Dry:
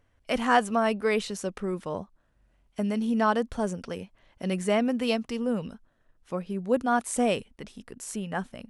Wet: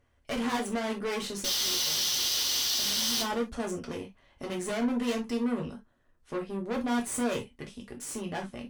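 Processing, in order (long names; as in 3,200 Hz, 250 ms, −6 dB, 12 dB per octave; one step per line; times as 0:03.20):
sound drawn into the spectrogram noise, 0:01.44–0:03.22, 2,800–6,300 Hz −15 dBFS
tube saturation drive 32 dB, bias 0.7
reverb whose tail is shaped and stops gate 90 ms falling, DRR 0.5 dB
level +1 dB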